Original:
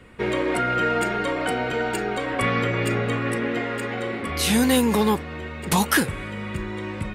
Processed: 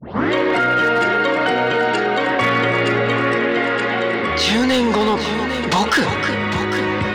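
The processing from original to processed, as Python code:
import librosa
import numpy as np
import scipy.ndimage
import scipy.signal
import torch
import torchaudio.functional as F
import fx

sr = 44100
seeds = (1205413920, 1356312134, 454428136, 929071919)

p1 = fx.tape_start_head(x, sr, length_s=0.32)
p2 = fx.rider(p1, sr, range_db=10, speed_s=2.0)
p3 = p1 + (p2 * 10.0 ** (1.0 / 20.0))
p4 = scipy.signal.sosfilt(scipy.signal.butter(4, 5500.0, 'lowpass', fs=sr, output='sos'), p3)
p5 = fx.dynamic_eq(p4, sr, hz=180.0, q=2.6, threshold_db=-27.0, ratio=4.0, max_db=-3)
p6 = scipy.signal.sosfilt(scipy.signal.butter(4, 76.0, 'highpass', fs=sr, output='sos'), p5)
p7 = fx.low_shelf(p6, sr, hz=250.0, db=-7.5)
p8 = p7 + fx.echo_single(p7, sr, ms=311, db=-13.5, dry=0)
p9 = np.clip(10.0 ** (10.0 / 20.0) * p8, -1.0, 1.0) / 10.0 ** (10.0 / 20.0)
p10 = fx.notch(p9, sr, hz=2400.0, q=14.0)
p11 = p10 + 10.0 ** (-14.5 / 20.0) * np.pad(p10, (int(802 * sr / 1000.0), 0))[:len(p10)]
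p12 = fx.env_flatten(p11, sr, amount_pct=50)
y = p12 * 10.0 ** (-1.5 / 20.0)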